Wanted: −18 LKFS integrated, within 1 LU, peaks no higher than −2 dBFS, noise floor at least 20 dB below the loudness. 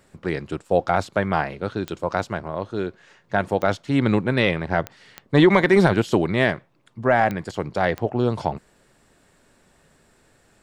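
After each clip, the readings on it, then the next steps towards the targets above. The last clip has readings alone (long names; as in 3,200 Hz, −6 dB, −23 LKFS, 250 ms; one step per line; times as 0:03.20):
number of clicks 6; integrated loudness −22.0 LKFS; sample peak −6.5 dBFS; target loudness −18.0 LKFS
→ click removal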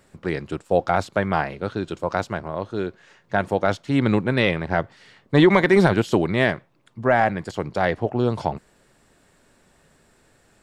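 number of clicks 0; integrated loudness −22.0 LKFS; sample peak −6.5 dBFS; target loudness −18.0 LKFS
→ level +4 dB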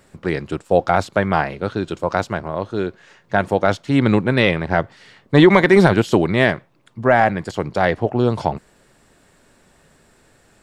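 integrated loudness −18.0 LKFS; sample peak −2.5 dBFS; background noise floor −56 dBFS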